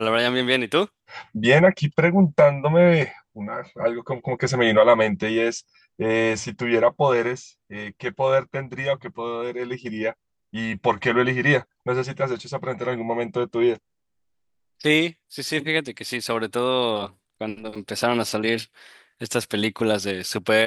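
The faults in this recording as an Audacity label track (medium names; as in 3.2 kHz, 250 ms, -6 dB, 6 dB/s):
17.750000	17.750000	dropout 4.7 ms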